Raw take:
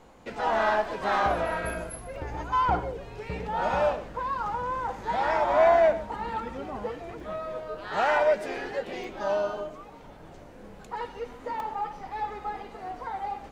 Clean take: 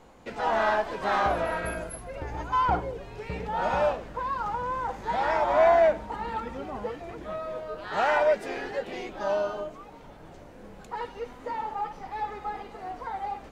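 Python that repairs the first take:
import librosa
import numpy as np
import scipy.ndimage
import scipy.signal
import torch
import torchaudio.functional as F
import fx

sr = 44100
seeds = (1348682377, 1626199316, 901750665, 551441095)

y = fx.fix_interpolate(x, sr, at_s=(1.7, 2.16, 7.2, 9.04, 10.79, 11.6), length_ms=1.7)
y = fx.fix_echo_inverse(y, sr, delay_ms=122, level_db=-17.0)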